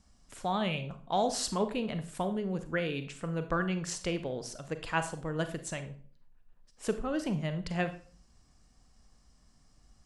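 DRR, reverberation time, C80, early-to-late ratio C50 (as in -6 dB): 9.0 dB, 0.45 s, 16.5 dB, 11.5 dB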